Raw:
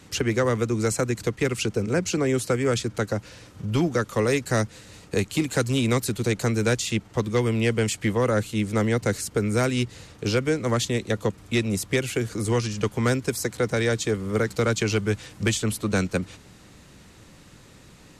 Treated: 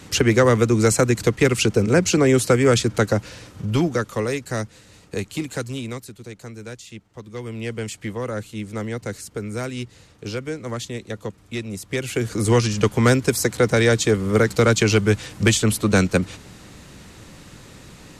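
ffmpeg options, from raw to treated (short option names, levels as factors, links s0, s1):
-af "volume=22.4,afade=t=out:st=3.07:d=1.3:silence=0.316228,afade=t=out:st=5.45:d=0.67:silence=0.298538,afade=t=in:st=7.22:d=0.53:silence=0.398107,afade=t=in:st=11.84:d=0.68:silence=0.251189"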